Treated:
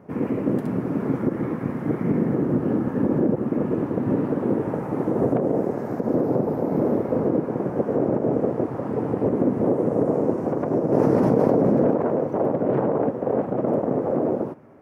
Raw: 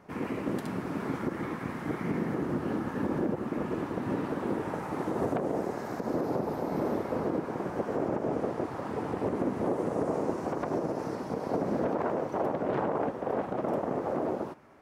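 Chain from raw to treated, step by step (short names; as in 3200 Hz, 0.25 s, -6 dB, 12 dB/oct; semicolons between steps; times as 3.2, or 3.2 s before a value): graphic EQ 125/250/500/4000/8000 Hz +10/+7/+8/-8/-5 dB; 10.92–11.91 fast leveller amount 100%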